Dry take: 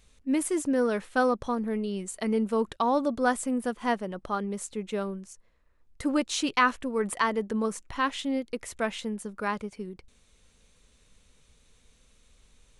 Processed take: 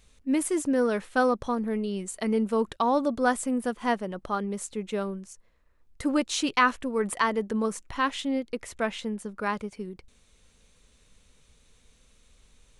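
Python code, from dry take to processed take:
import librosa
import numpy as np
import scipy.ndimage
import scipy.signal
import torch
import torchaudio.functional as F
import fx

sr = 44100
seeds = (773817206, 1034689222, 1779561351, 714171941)

y = fx.high_shelf(x, sr, hz=7400.0, db=-6.0, at=(8.24, 9.46))
y = y * 10.0 ** (1.0 / 20.0)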